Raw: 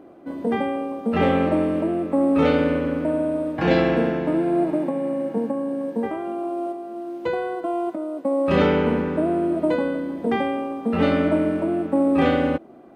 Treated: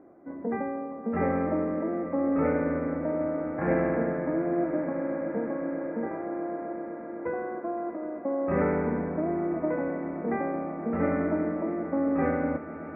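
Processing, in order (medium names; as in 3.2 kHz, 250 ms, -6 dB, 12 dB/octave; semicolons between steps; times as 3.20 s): steep low-pass 2.2 kHz 72 dB/octave; echo with a slow build-up 128 ms, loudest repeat 8, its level -18 dB; trim -7.5 dB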